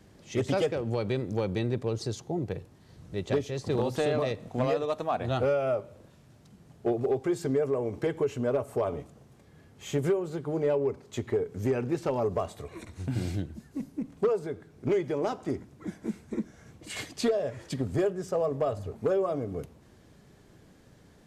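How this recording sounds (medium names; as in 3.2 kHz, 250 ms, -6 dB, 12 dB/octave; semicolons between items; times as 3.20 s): noise floor -57 dBFS; spectral tilt -6.5 dB/octave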